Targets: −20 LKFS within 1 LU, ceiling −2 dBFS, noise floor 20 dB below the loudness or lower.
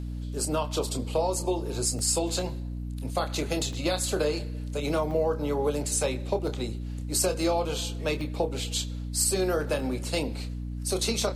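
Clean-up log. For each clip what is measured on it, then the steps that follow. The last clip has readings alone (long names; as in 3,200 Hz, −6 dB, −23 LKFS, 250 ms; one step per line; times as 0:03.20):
number of dropouts 8; longest dropout 1.5 ms; mains hum 60 Hz; hum harmonics up to 300 Hz; level of the hum −32 dBFS; integrated loudness −28.5 LKFS; sample peak −13.0 dBFS; target loudness −20.0 LKFS
→ repair the gap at 0:01.99/0:03.73/0:05.11/0:06.47/0:07.40/0:08.21/0:09.80/0:11.22, 1.5 ms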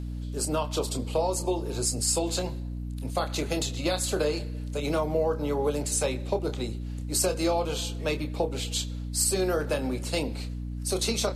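number of dropouts 0; mains hum 60 Hz; hum harmonics up to 300 Hz; level of the hum −32 dBFS
→ hum removal 60 Hz, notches 5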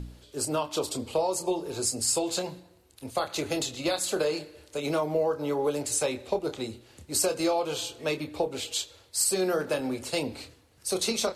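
mains hum none found; integrated loudness −29.0 LKFS; sample peak −13.0 dBFS; target loudness −20.0 LKFS
→ level +9 dB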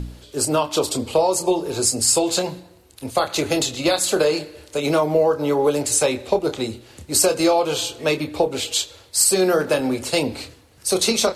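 integrated loudness −20.0 LKFS; sample peak −4.0 dBFS; background noise floor −50 dBFS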